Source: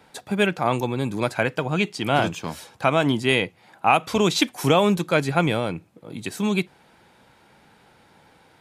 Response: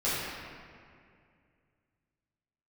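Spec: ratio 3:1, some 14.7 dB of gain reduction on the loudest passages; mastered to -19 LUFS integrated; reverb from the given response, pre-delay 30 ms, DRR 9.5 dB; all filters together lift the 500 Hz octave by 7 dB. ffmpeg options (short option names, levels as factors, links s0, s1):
-filter_complex "[0:a]equalizer=f=500:t=o:g=9,acompressor=threshold=0.0398:ratio=3,asplit=2[s0][s1];[1:a]atrim=start_sample=2205,adelay=30[s2];[s1][s2]afir=irnorm=-1:irlink=0,volume=0.0944[s3];[s0][s3]amix=inputs=2:normalize=0,volume=3.35"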